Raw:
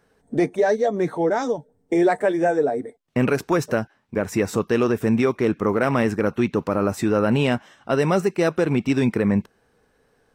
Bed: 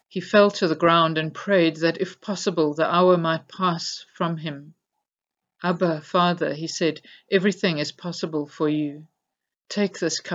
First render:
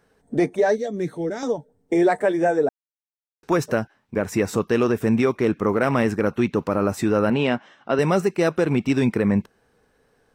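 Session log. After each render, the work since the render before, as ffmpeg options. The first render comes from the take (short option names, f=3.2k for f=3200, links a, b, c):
-filter_complex "[0:a]asettb=1/sr,asplit=3[a][b][c];[a]atrim=end=0.784[d];[b]atrim=start=0.78:end=1.43,asetpts=PTS-STARTPTS,afade=t=in:d=0.004:c=qsin,afade=t=out:st=0.646:d=0.004:c=qsin,equalizer=f=920:w=0.87:g=-15[e];[c]atrim=start=1.426[f];[d][e]acrossfade=d=0.004:c1=hsin:c2=qsin[g];[g][f]acrossfade=d=0.004:c1=qsin:c2=hsin,asettb=1/sr,asplit=3[h][i][j];[h]atrim=end=7.304[k];[i]atrim=start=7.3:end=7.99,asetpts=PTS-STARTPTS,afade=t=in:d=0.004:c=qsin,afade=t=out:st=0.686:d=0.004:c=qsin,highpass=170,lowpass=4.4k[l];[j]atrim=start=7.986[m];[k][l]acrossfade=d=0.004:c1=hsin:c2=qsin[n];[n][m]acrossfade=d=0.004:c1=qsin:c2=hsin,asplit=3[o][p][q];[o]atrim=end=2.69,asetpts=PTS-STARTPTS,afade=t=out:st=2.686:d=0.004:c=hsin[r];[p]atrim=start=2.69:end=3.43,asetpts=PTS-STARTPTS,volume=0[s];[q]atrim=start=3.43,asetpts=PTS-STARTPTS,afade=t=in:d=0.004:c=hsin[t];[r][s][t]concat=n=3:v=0:a=1"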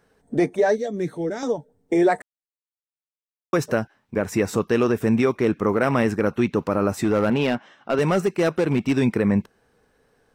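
-filter_complex "[0:a]asettb=1/sr,asplit=3[a][b][c];[a]atrim=end=7.044[d];[b]atrim=start=7.04:end=8.93,asetpts=PTS-STARTPTS,afade=t=in:d=0.004:c=qsin,afade=t=out:st=1.886:d=0.004:c=qsin,volume=14dB,asoftclip=hard,volume=-14dB[e];[c]atrim=start=8.926[f];[d][e]acrossfade=d=0.004:c1=hsin:c2=qsin[g];[g][f]acrossfade=d=0.004:c1=qsin:c2=hsin,asplit=3[h][i][j];[h]atrim=end=2.22,asetpts=PTS-STARTPTS,afade=t=out:st=2.216:d=0.004:c=hsin[k];[i]atrim=start=2.22:end=3.53,asetpts=PTS-STARTPTS,volume=0[l];[j]atrim=start=3.53,asetpts=PTS-STARTPTS,afade=t=in:d=0.004:c=hsin[m];[k][l][m]concat=n=3:v=0:a=1"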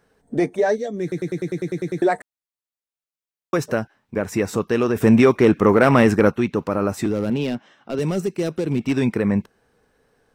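-filter_complex "[0:a]asplit=3[a][b][c];[a]afade=t=out:st=4.95:d=0.02[d];[b]acontrast=78,afade=t=in:st=4.95:d=0.02,afade=t=out:st=6.3:d=0.02[e];[c]afade=t=in:st=6.3:d=0.02[f];[d][e][f]amix=inputs=3:normalize=0,asettb=1/sr,asplit=3[g][h][i];[g]atrim=end=7.064[j];[h]atrim=start=7.06:end=8.81,asetpts=PTS-STARTPTS,afade=t=in:d=0.004:c=qsin,afade=t=out:st=1.746:d=0.004:c=qsin,acrossover=split=490|3000[k][l][m];[l]acompressor=threshold=-57dB:ratio=1.5:attack=3.2:release=140:knee=2.83:detection=peak[n];[k][n][m]amix=inputs=3:normalize=0[o];[i]atrim=start=8.806[p];[j][o]acrossfade=d=0.004:c1=hsin:c2=qsin[q];[q][p]acrossfade=d=0.004:c1=qsin:c2=hsin,asplit=11[r][s][t][u][v][w][x][y][z][aa][ab];[r]atrim=end=1.122[ac];[s]atrim=start=1.018:end=1.122[ad];[t]atrim=start=1.018:end=1.122[ae];[u]atrim=start=1.018:end=1.122[af];[v]atrim=start=1.018:end=1.122[ag];[w]atrim=start=1.018:end=1.122[ah];[x]atrim=start=1.018:end=1.122[ai];[y]atrim=start=1.018:end=1.122[aj];[z]atrim=start=1.018:end=1.122[ak];[aa]atrim=start=1.018:end=1.122[al];[ab]atrim=start=2.018[am];[ac][ad]acrossfade=d=0.004:c1=hsin:c2=hsin[an];[an][ae]acrossfade=d=0.004:c1=hsin:c2=hsin[ao];[ao][af]acrossfade=d=0.004:c1=hsin:c2=hsin[ap];[ap][ag]acrossfade=d=0.004:c1=hsin:c2=hsin[aq];[aq][ah]acrossfade=d=0.004:c1=hsin:c2=hsin[ar];[ar][ai]acrossfade=d=0.004:c1=hsin:c2=hsin[as];[as][aj]acrossfade=d=0.004:c1=hsin:c2=hsin[at];[at][ak]acrossfade=d=0.004:c1=hsin:c2=hsin[au];[au][al]acrossfade=d=0.004:c1=hsin:c2=hsin[av];[av][am]acrossfade=d=0.004:c1=hsin:c2=hsin"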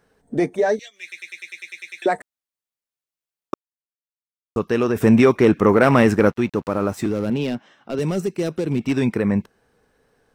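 -filter_complex "[0:a]asettb=1/sr,asplit=3[a][b][c];[a]atrim=end=0.794[d];[b]atrim=start=0.79:end=2.06,asetpts=PTS-STARTPTS,afade=t=in:d=0.004:c=qsin,afade=t=out:st=1.266:d=0.004:c=qsin,highpass=f=2.6k:t=q:w=6[e];[c]atrim=start=2.056[f];[d][e]acrossfade=d=0.004:c1=hsin:c2=qsin[g];[g][f]acrossfade=d=0.004:c1=qsin:c2=hsin,asettb=1/sr,asplit=3[h][i][j];[h]atrim=end=5.884[k];[i]atrim=start=5.88:end=7.24,asetpts=PTS-STARTPTS,afade=t=in:d=0.004:c=qsin,afade=t=out:st=1.356:d=0.004:c=qsin,aeval=exprs='sgn(val(0))*max(abs(val(0))-0.00596,0)':c=same[l];[j]atrim=start=7.236[m];[k][l]acrossfade=d=0.004:c1=hsin:c2=qsin[n];[n][m]acrossfade=d=0.004:c1=qsin:c2=hsin,asplit=3[o][p][q];[o]atrim=end=3.54,asetpts=PTS-STARTPTS,afade=t=out:st=3.536:d=0.004:c=hsin[r];[p]atrim=start=3.54:end=4.56,asetpts=PTS-STARTPTS,volume=0[s];[q]atrim=start=4.56,asetpts=PTS-STARTPTS,afade=t=in:d=0.004:c=hsin[t];[r][s][t]concat=n=3:v=0:a=1"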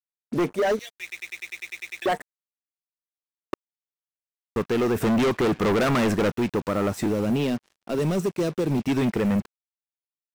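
-af "asoftclip=type=hard:threshold=-19.5dB,acrusher=bits=6:mix=0:aa=0.5"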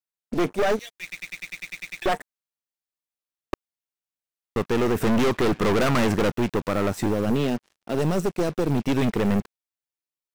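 -af "aeval=exprs='0.112*(cos(1*acos(clip(val(0)/0.112,-1,1)))-cos(1*PI/2))+0.0316*(cos(2*acos(clip(val(0)/0.112,-1,1)))-cos(2*PI/2))':c=same"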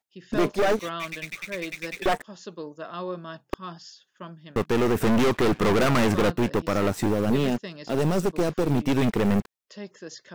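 -filter_complex "[1:a]volume=-16dB[a];[0:a][a]amix=inputs=2:normalize=0"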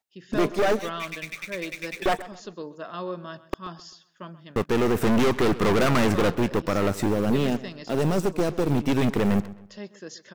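-filter_complex "[0:a]asplit=2[a][b];[b]adelay=130,lowpass=f=4.3k:p=1,volume=-17dB,asplit=2[c][d];[d]adelay=130,lowpass=f=4.3k:p=1,volume=0.36,asplit=2[e][f];[f]adelay=130,lowpass=f=4.3k:p=1,volume=0.36[g];[a][c][e][g]amix=inputs=4:normalize=0"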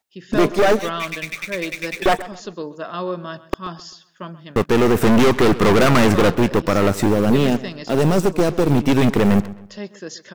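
-af "volume=7dB"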